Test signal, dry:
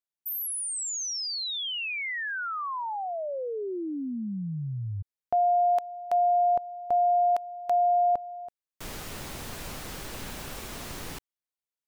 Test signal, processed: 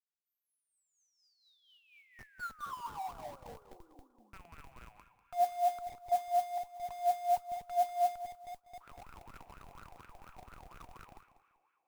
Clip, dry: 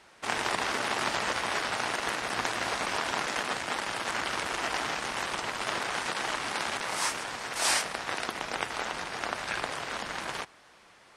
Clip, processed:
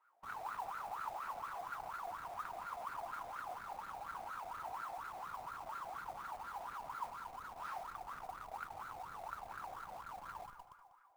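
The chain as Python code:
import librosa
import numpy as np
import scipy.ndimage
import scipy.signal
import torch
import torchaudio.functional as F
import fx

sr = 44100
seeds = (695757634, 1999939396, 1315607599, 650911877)

p1 = fx.rattle_buzz(x, sr, strikes_db=-42.0, level_db=-22.0)
p2 = fx.lowpass(p1, sr, hz=3900.0, slope=6)
p3 = fx.peak_eq(p2, sr, hz=1700.0, db=-3.0, octaves=0.38)
p4 = fx.hum_notches(p3, sr, base_hz=60, count=6)
p5 = fx.rev_fdn(p4, sr, rt60_s=2.8, lf_ratio=1.0, hf_ratio=0.9, size_ms=18.0, drr_db=6.5)
p6 = fx.wah_lfo(p5, sr, hz=4.2, low_hz=700.0, high_hz=1400.0, q=13.0)
p7 = fx.schmitt(p6, sr, flips_db=-48.5)
p8 = p6 + (p7 * 10.0 ** (-11.5 / 20.0))
p9 = fx.echo_feedback(p8, sr, ms=194, feedback_pct=22, wet_db=-14.0)
p10 = fx.mod_noise(p9, sr, seeds[0], snr_db=22)
y = p10 * 10.0 ** (-3.0 / 20.0)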